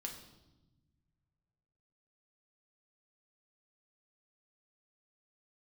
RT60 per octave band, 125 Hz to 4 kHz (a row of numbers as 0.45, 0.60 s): 2.7, 1.9, 1.2, 0.90, 0.75, 0.90 s